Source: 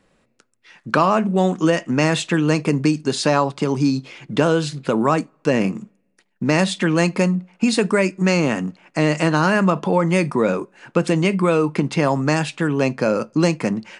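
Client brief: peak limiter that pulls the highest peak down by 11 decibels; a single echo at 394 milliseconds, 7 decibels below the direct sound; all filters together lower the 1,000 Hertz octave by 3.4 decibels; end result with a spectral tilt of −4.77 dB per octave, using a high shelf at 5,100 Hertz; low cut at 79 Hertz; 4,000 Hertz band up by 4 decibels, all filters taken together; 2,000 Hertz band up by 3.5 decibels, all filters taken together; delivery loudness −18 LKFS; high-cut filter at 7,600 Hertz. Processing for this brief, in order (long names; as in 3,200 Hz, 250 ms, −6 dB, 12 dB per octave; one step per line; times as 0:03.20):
high-pass filter 79 Hz
low-pass filter 7,600 Hz
parametric band 1,000 Hz −6 dB
parametric band 2,000 Hz +5.5 dB
parametric band 4,000 Hz +6.5 dB
high-shelf EQ 5,100 Hz −6 dB
brickwall limiter −13.5 dBFS
single-tap delay 394 ms −7 dB
level +5 dB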